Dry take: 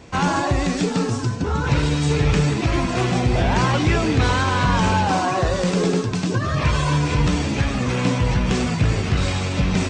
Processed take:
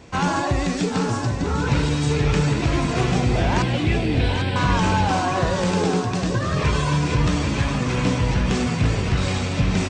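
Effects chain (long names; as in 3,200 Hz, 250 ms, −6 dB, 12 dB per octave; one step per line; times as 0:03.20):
0:03.62–0:04.56: phaser with its sweep stopped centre 2,800 Hz, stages 4
on a send: single-tap delay 794 ms −8 dB
on the sum: level −1.5 dB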